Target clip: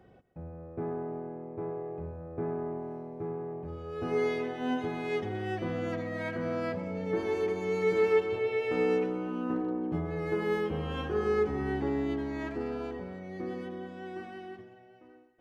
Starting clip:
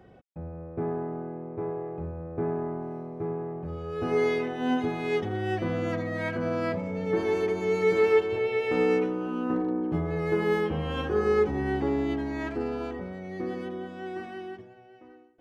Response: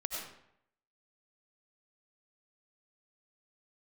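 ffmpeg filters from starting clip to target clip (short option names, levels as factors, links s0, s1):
-filter_complex "[0:a]asplit=2[s0][s1];[1:a]atrim=start_sample=2205,adelay=129[s2];[s1][s2]afir=irnorm=-1:irlink=0,volume=0.178[s3];[s0][s3]amix=inputs=2:normalize=0,volume=0.596"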